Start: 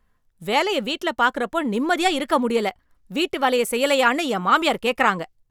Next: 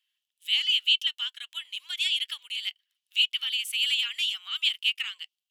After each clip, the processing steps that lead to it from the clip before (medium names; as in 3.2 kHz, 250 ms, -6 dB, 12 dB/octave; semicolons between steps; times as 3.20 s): compression, threshold -20 dBFS, peak gain reduction 9 dB; ladder high-pass 2.8 kHz, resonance 75%; trim +7 dB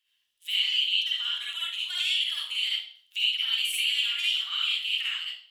compression 4:1, threshold -31 dBFS, peak gain reduction 11.5 dB; reverberation RT60 0.55 s, pre-delay 45 ms, DRR -6 dB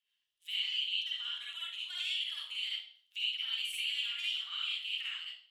treble shelf 10 kHz -8.5 dB; trim -8.5 dB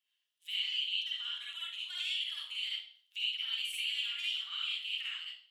high-pass 490 Hz 6 dB/octave